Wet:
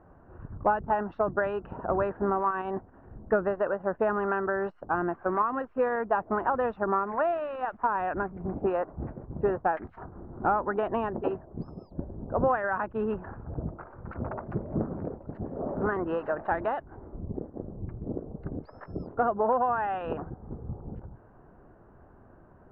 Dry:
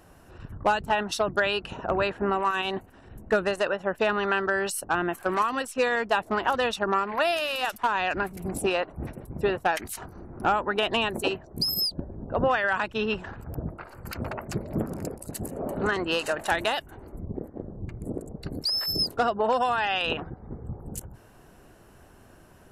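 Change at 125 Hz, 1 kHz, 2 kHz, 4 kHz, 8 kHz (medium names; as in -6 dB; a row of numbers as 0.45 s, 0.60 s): -1.0 dB, -1.5 dB, -8.0 dB, under -30 dB, under -40 dB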